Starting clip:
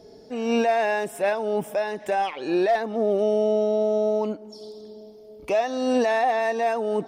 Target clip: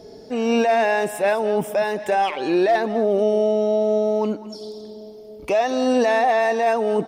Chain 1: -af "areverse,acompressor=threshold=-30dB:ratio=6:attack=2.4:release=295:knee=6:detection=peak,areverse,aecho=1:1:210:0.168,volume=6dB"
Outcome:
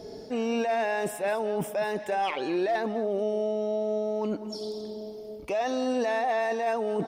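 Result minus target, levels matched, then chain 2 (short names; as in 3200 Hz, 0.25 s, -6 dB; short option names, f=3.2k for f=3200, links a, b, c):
compressor: peak gain reduction +9.5 dB
-af "areverse,acompressor=threshold=-18dB:ratio=6:attack=2.4:release=295:knee=6:detection=peak,areverse,aecho=1:1:210:0.168,volume=6dB"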